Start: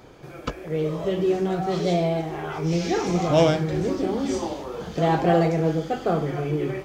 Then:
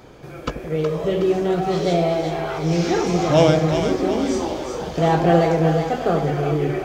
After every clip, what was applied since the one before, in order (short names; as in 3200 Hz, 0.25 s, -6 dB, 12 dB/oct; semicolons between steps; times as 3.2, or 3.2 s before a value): split-band echo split 610 Hz, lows 81 ms, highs 0.369 s, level -6 dB; gain +3 dB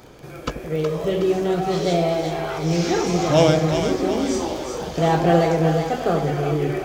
high shelf 5100 Hz +6 dB; crackle 14/s -27 dBFS; gain -1 dB